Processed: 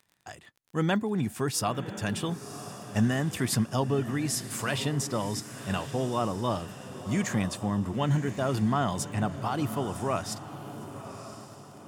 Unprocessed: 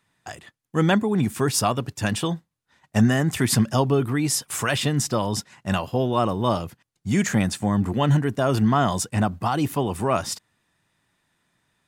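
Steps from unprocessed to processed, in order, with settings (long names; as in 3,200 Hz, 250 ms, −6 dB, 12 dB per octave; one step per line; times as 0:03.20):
feedback delay with all-pass diffusion 1,041 ms, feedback 44%, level −11.5 dB
surface crackle 25 per second −37 dBFS
level −7 dB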